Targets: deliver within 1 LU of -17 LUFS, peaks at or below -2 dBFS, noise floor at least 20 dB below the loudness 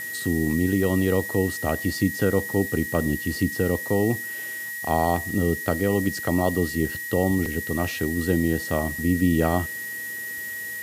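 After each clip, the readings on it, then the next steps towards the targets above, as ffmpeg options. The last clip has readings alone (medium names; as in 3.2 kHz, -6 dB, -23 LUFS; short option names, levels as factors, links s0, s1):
steady tone 1.9 kHz; tone level -31 dBFS; noise floor -33 dBFS; noise floor target -45 dBFS; loudness -24.5 LUFS; peak level -7.0 dBFS; loudness target -17.0 LUFS
-> -af "bandreject=f=1900:w=30"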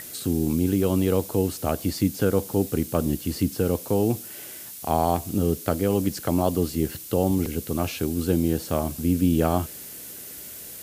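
steady tone not found; noise floor -40 dBFS; noise floor target -45 dBFS
-> -af "afftdn=nr=6:nf=-40"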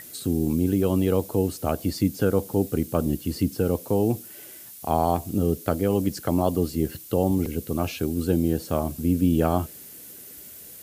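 noise floor -44 dBFS; noise floor target -45 dBFS
-> -af "afftdn=nr=6:nf=-44"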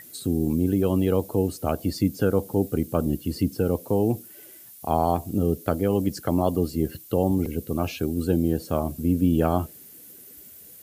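noise floor -47 dBFS; loudness -25.0 LUFS; peak level -7.5 dBFS; loudness target -17.0 LUFS
-> -af "volume=2.51,alimiter=limit=0.794:level=0:latency=1"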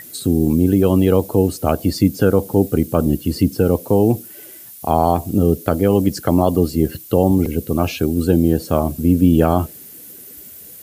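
loudness -17.0 LUFS; peak level -2.0 dBFS; noise floor -39 dBFS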